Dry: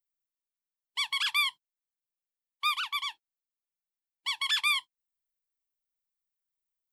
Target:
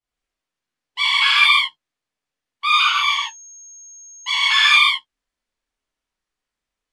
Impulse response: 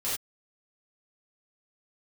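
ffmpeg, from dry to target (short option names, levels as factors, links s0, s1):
-filter_complex "[0:a]asettb=1/sr,asplit=3[s0][s1][s2];[s0]atrim=end=2.704[s3];[s1]atrim=start=2.7:end=4.65,asetpts=PTS-STARTPTS,afade=t=in:d=0.004:c=qsin,afade=t=out:st=1.946:d=0.004:c=qsin,aeval=exprs='val(0)+0.00891*sin(2*PI*6500*n/s)':c=same[s4];[s2]atrim=start=4.646[s5];[s3][s4]acrossfade=d=0.004:c1=hsin:c2=qsin[s6];[s6][s5]acrossfade=d=0.004:c1=qsin:c2=hsin,lowpass=9100,highshelf=f=4500:g=-11.5[s7];[1:a]atrim=start_sample=2205,asetrate=24696,aresample=44100[s8];[s7][s8]afir=irnorm=-1:irlink=0,volume=2"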